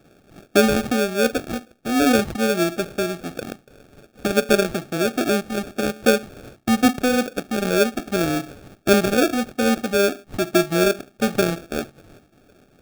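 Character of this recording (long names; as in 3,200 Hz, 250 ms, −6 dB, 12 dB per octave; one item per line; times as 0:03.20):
phaser sweep stages 12, 2.5 Hz, lowest notch 630–1,600 Hz
aliases and images of a low sample rate 1,000 Hz, jitter 0%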